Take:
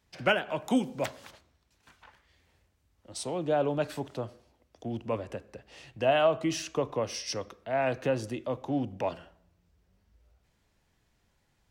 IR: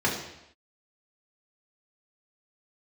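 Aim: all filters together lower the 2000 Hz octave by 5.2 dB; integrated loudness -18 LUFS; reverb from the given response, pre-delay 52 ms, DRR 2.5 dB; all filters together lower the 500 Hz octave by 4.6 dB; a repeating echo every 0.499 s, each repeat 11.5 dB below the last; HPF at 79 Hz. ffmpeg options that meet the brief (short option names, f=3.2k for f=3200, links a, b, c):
-filter_complex "[0:a]highpass=79,equalizer=f=500:t=o:g=-5.5,equalizer=f=2k:t=o:g=-7.5,aecho=1:1:499|998|1497:0.266|0.0718|0.0194,asplit=2[a][b];[1:a]atrim=start_sample=2205,adelay=52[c];[b][c]afir=irnorm=-1:irlink=0,volume=-15.5dB[d];[a][d]amix=inputs=2:normalize=0,volume=14dB"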